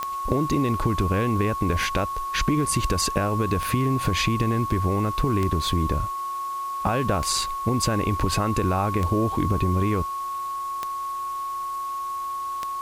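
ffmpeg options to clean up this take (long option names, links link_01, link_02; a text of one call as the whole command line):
ffmpeg -i in.wav -af "adeclick=threshold=4,bandreject=frequency=364.8:width_type=h:width=4,bandreject=frequency=729.6:width_type=h:width=4,bandreject=frequency=1094.4:width_type=h:width=4,bandreject=frequency=1459.2:width_type=h:width=4,bandreject=frequency=1100:width=30,afwtdn=0.0045" out.wav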